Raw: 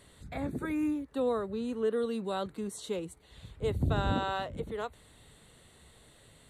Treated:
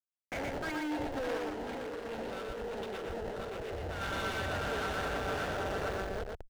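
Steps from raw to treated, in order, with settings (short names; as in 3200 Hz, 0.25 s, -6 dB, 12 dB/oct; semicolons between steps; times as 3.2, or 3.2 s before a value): nonlinear frequency compression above 3300 Hz 1.5:1; band shelf 2200 Hz +15.5 dB; bouncing-ball echo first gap 0.59 s, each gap 0.75×, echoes 5; Schmitt trigger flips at -34 dBFS; tube stage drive 40 dB, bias 0.55; graphic EQ 125/250/1000/2000 Hz -7/-4/-7/-4 dB; overdrive pedal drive 28 dB, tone 2000 Hz, clips at -35 dBFS; 1.37–4.01 negative-ratio compressor -46 dBFS, ratio -1; echo 0.119 s -3 dB; gain +5 dB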